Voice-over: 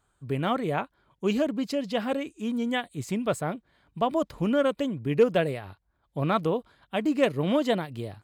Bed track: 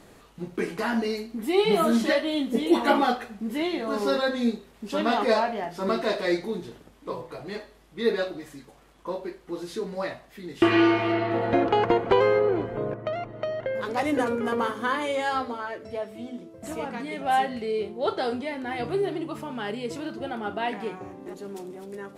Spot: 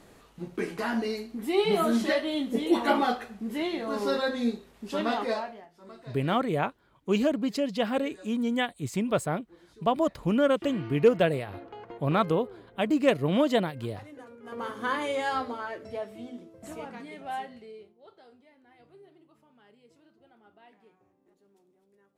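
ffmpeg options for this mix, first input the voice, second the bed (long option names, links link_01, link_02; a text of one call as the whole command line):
ffmpeg -i stem1.wav -i stem2.wav -filter_complex "[0:a]adelay=5850,volume=0.5dB[link_01];[1:a]volume=17dB,afade=type=out:start_time=5:duration=0.68:silence=0.105925,afade=type=in:start_time=14.42:duration=0.5:silence=0.1,afade=type=out:start_time=15.87:duration=2.11:silence=0.0530884[link_02];[link_01][link_02]amix=inputs=2:normalize=0" out.wav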